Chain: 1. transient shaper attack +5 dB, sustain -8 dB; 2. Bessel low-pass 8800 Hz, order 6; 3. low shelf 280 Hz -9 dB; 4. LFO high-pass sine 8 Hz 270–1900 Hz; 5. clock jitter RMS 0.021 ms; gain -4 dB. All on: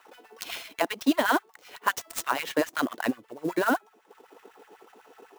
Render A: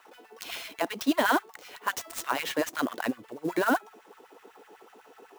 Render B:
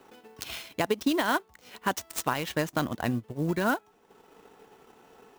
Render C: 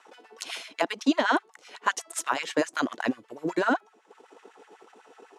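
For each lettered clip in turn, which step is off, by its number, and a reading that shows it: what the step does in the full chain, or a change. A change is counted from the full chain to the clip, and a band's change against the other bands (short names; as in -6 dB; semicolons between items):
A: 1, momentary loudness spread change +2 LU; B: 4, 125 Hz band +15.0 dB; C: 5, momentary loudness spread change +1 LU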